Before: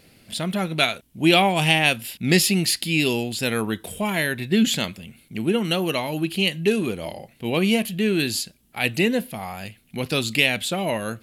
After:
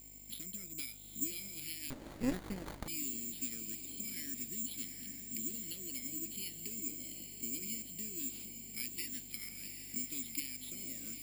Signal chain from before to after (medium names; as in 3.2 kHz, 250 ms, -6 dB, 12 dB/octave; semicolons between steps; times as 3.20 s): 8.98–9.49 s: high-order bell 2.7 kHz +15.5 dB 2.8 oct; compression 10:1, threshold -33 dBFS, peak gain reduction 26.5 dB; vowel filter i; mains buzz 50 Hz, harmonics 19, -60 dBFS -6 dB/octave; careless resampling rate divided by 6×, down none, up zero stuff; echo that smears into a reverb 811 ms, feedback 47%, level -7 dB; 1.90–2.88 s: sliding maximum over 17 samples; trim -3 dB